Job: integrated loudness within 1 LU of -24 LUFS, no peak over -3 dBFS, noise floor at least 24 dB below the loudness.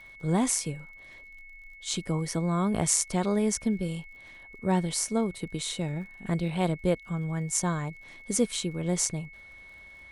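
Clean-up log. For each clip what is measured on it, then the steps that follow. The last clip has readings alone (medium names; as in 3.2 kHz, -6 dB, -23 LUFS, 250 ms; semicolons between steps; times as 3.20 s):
tick rate 45 per s; steady tone 2.2 kHz; tone level -47 dBFS; loudness -29.0 LUFS; peak level -5.5 dBFS; loudness target -24.0 LUFS
-> de-click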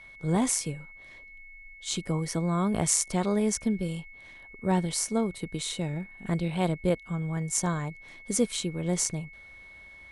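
tick rate 0.30 per s; steady tone 2.2 kHz; tone level -47 dBFS
-> band-stop 2.2 kHz, Q 30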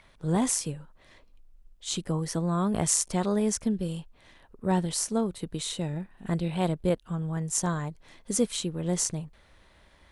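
steady tone not found; loudness -29.0 LUFS; peak level -5.5 dBFS; loudness target -24.0 LUFS
-> trim +5 dB; peak limiter -3 dBFS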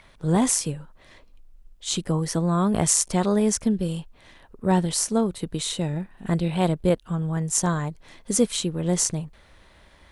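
loudness -24.0 LUFS; peak level -3.0 dBFS; noise floor -54 dBFS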